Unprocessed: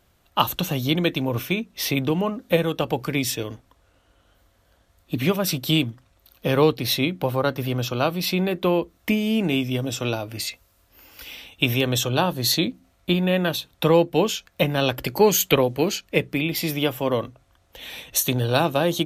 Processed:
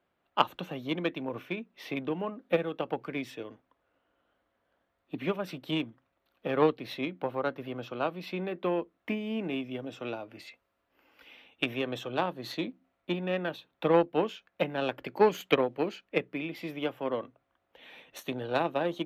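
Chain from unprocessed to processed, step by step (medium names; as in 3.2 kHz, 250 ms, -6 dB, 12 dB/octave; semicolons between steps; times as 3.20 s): Chebyshev shaper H 3 -14 dB, 7 -38 dB, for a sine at -2 dBFS; three-band isolator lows -18 dB, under 180 Hz, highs -21 dB, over 3 kHz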